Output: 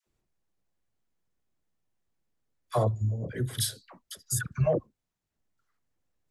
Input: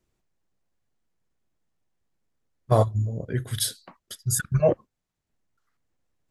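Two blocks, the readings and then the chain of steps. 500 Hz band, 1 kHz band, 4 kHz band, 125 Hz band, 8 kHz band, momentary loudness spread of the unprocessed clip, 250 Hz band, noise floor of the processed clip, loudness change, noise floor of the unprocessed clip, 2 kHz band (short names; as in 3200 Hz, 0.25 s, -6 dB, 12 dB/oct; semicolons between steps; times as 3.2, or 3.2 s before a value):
-6.0 dB, -5.5 dB, -3.5 dB, -4.5 dB, -4.5 dB, 11 LU, -4.5 dB, under -85 dBFS, -4.5 dB, -83 dBFS, -3.0 dB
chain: dispersion lows, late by 66 ms, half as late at 770 Hz; limiter -13.5 dBFS, peak gain reduction 5.5 dB; gain -3 dB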